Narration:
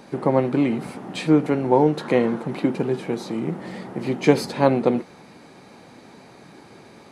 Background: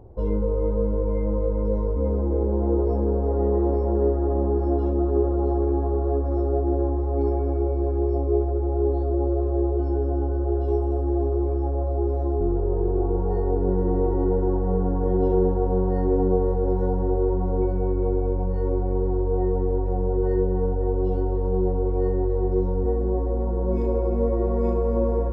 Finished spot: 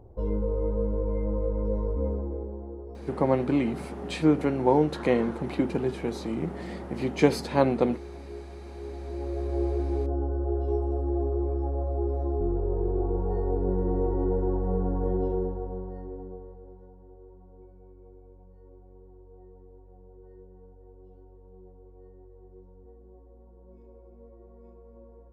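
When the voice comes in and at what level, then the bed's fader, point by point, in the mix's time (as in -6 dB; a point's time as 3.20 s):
2.95 s, -4.5 dB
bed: 2.04 s -4.5 dB
2.76 s -19 dB
8.71 s -19 dB
9.61 s -4.5 dB
15.06 s -4.5 dB
16.92 s -28.5 dB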